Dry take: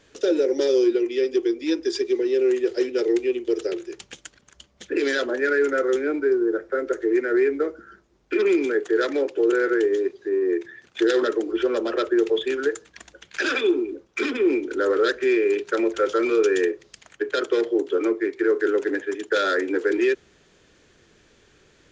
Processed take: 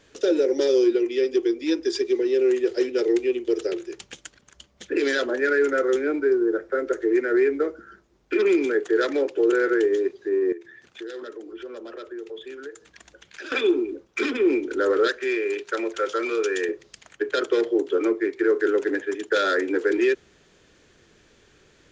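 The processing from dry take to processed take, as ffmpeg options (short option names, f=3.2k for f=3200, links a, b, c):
-filter_complex "[0:a]asettb=1/sr,asplit=3[a][b][c];[a]atrim=end=10.524[d];[b]atrim=start=10.52:end=13.52,asetpts=PTS-STARTPTS,afade=t=in:d=0.004:c=qsin,afade=t=out:st=2.996:d=0.004:c=qsin,acompressor=threshold=-46dB:ratio=2:attack=3.2:release=140:knee=1:detection=peak[e];[c]atrim=start=13.516[f];[d][e]acrossfade=d=0.004:c1=hsin:c2=qsin[g];[g][f]acrossfade=d=0.004:c1=qsin:c2=hsin,asettb=1/sr,asplit=3[h][i][j];[h]atrim=end=15.074[k];[i]atrim=start=15.07:end=16.69,asetpts=PTS-STARTPTS,afade=t=in:d=0.004:c=qsin,afade=t=out:st=1.616:d=0.004:c=qsin,lowshelf=f=420:g=-10.5[l];[j]atrim=start=16.686[m];[k][l]acrossfade=d=0.004:c1=hsin:c2=qsin[n];[n][m]acrossfade=d=0.004:c1=qsin:c2=hsin"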